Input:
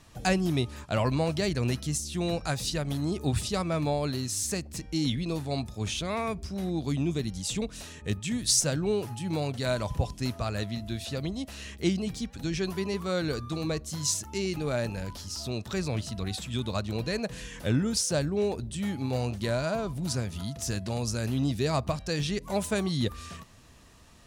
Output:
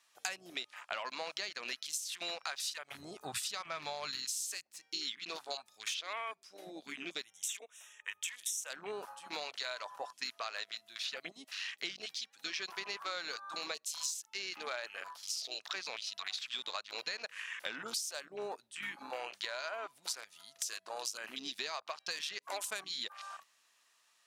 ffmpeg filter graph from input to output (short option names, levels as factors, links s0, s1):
-filter_complex "[0:a]asettb=1/sr,asplit=3[s0][s1][s2];[s0]atrim=end=1.964[s3];[s1]atrim=start=1.96:end=4.63,asetpts=PTS-STARTPTS,afade=t=in:d=0.004:c=qsin,afade=t=out:st=2.666:d=0.004:c=qsin,asubboost=boost=6.5:cutoff=160,acompressor=mode=upward:threshold=0.0355:ratio=2.5:attack=3.2:release=140:knee=2.83:detection=peak[s4];[s2]atrim=start=4.626[s5];[s3][s4]acrossfade=d=0.004:c1=hsin:c2=qsin[s6];[s6][s5]acrossfade=d=0.004:c1=qsin:c2=hsin,asettb=1/sr,asplit=3[s7][s8][s9];[s7]atrim=end=7.244[s10];[s8]atrim=start=7.24:end=8.7,asetpts=PTS-STARTPTS,afade=t=in:d=0.004:c=qsin,afade=t=out:st=1.456:d=0.004:c=qsin,asuperstop=centerf=4500:order=8:qfactor=2.5,equalizer=f=230:w=1.6:g=-14,acompressor=threshold=0.0398:ratio=2.5:attack=3.2:release=140:knee=1:detection=peak[s11];[s9]atrim=start=8.696[s12];[s10][s11]acrossfade=d=0.004:c1=hsin:c2=qsin[s13];[s13][s12]acrossfade=d=0.004:c1=qsin:c2=hsin,highpass=1200,afwtdn=0.00562,acompressor=threshold=0.00794:ratio=12,volume=2.11"